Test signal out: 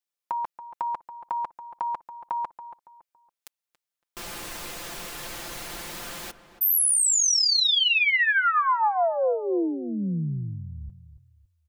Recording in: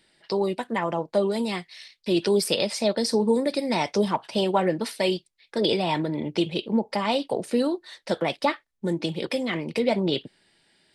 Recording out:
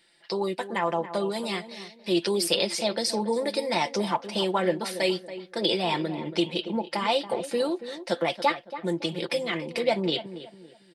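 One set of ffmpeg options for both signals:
-filter_complex "[0:a]lowshelf=f=330:g=-10,aecho=1:1:5.8:0.54,asplit=2[a][b];[b]adelay=280,lowpass=f=1.7k:p=1,volume=-12dB,asplit=2[c][d];[d]adelay=280,lowpass=f=1.7k:p=1,volume=0.34,asplit=2[e][f];[f]adelay=280,lowpass=f=1.7k:p=1,volume=0.34[g];[a][c][e][g]amix=inputs=4:normalize=0"

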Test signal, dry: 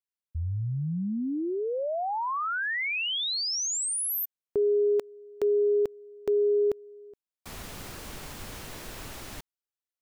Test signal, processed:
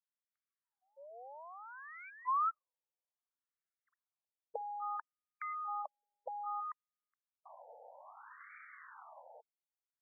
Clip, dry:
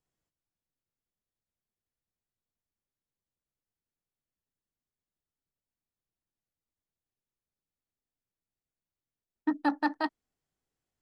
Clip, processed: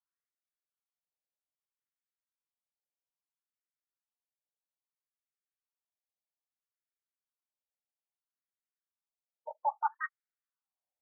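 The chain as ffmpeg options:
-af "aeval=exprs='0.178*(cos(1*acos(clip(val(0)/0.178,-1,1)))-cos(1*PI/2))+0.0316*(cos(2*acos(clip(val(0)/0.178,-1,1)))-cos(2*PI/2))+0.00794*(cos(5*acos(clip(val(0)/0.178,-1,1)))-cos(5*PI/2))+0.0178*(cos(7*acos(clip(val(0)/0.178,-1,1)))-cos(7*PI/2))':c=same,afftfilt=real='re*between(b*sr/1024,640*pow(1700/640,0.5+0.5*sin(2*PI*0.61*pts/sr))/1.41,640*pow(1700/640,0.5+0.5*sin(2*PI*0.61*pts/sr))*1.41)':imag='im*between(b*sr/1024,640*pow(1700/640,0.5+0.5*sin(2*PI*0.61*pts/sr))/1.41,640*pow(1700/640,0.5+0.5*sin(2*PI*0.61*pts/sr))*1.41)':win_size=1024:overlap=0.75,volume=1dB"

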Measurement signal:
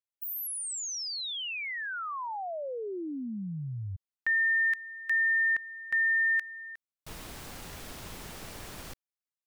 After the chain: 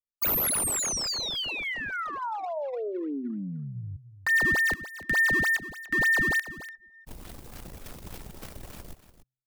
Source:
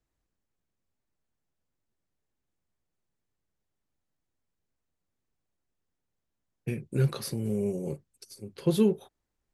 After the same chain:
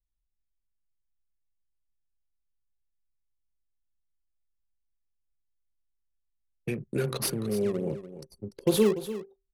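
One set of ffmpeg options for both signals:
-filter_complex "[0:a]acrossover=split=220[a][b];[b]crystalizer=i=1:c=0[c];[a][c]amix=inputs=2:normalize=0,bandreject=f=129.8:t=h:w=4,bandreject=f=259.6:t=h:w=4,bandreject=f=389.4:t=h:w=4,bandreject=f=519.2:t=h:w=4,bandreject=f=649:t=h:w=4,bandreject=f=778.8:t=h:w=4,bandreject=f=908.6:t=h:w=4,bandreject=f=1.0384k:t=h:w=4,bandreject=f=1.1682k:t=h:w=4,bandreject=f=1.298k:t=h:w=4,bandreject=f=1.4278k:t=h:w=4,bandreject=f=1.5576k:t=h:w=4,bandreject=f=1.6874k:t=h:w=4,bandreject=f=1.8172k:t=h:w=4,bandreject=f=1.947k:t=h:w=4,bandreject=f=2.0768k:t=h:w=4,acrossover=split=260[d][e];[d]acompressor=threshold=-40dB:ratio=6:release=182:knee=2.83:detection=peak[f];[f][e]amix=inputs=2:normalize=0,asplit=2[g][h];[h]acrusher=samples=17:mix=1:aa=0.000001:lfo=1:lforange=27.2:lforate=3.4,volume=-7.5dB[i];[g][i]amix=inputs=2:normalize=0,anlmdn=1.58,aecho=1:1:292:0.224,volume=1.5dB"

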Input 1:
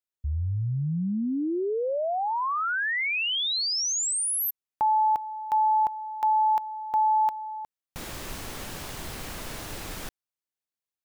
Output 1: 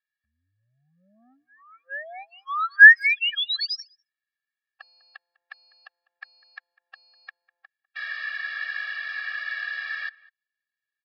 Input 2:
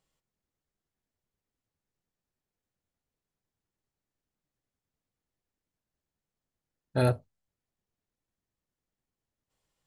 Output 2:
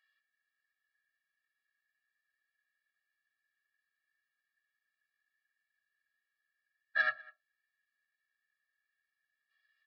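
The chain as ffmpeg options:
-filter_complex "[0:a]aresample=11025,asoftclip=type=tanh:threshold=-22.5dB,aresample=44100,highpass=f=1.7k:t=q:w=12,asplit=2[a][b];[b]adelay=200,highpass=300,lowpass=3.4k,asoftclip=type=hard:threshold=-12.5dB,volume=-23dB[c];[a][c]amix=inputs=2:normalize=0,afftfilt=real='re*eq(mod(floor(b*sr/1024/270),2),0)':imag='im*eq(mod(floor(b*sr/1024/270),2),0)':win_size=1024:overlap=0.75,volume=2.5dB"

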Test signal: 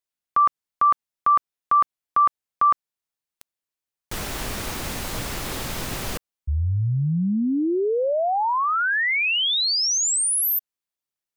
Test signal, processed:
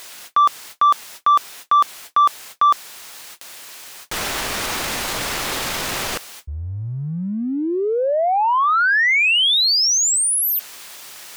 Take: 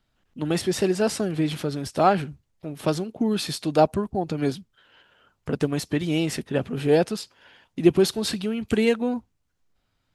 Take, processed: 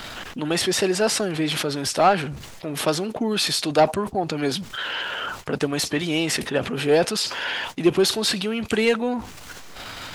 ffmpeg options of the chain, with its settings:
-filter_complex "[0:a]areverse,acompressor=mode=upward:threshold=-20dB:ratio=4:attack=0.38:release=46:knee=2.83:detection=peak,areverse,asplit=2[a][b];[b]highpass=f=720:p=1,volume=13dB,asoftclip=type=tanh:threshold=-4dB[c];[a][c]amix=inputs=2:normalize=0,lowpass=f=7.9k:p=1,volume=-6dB,volume=-1.5dB"

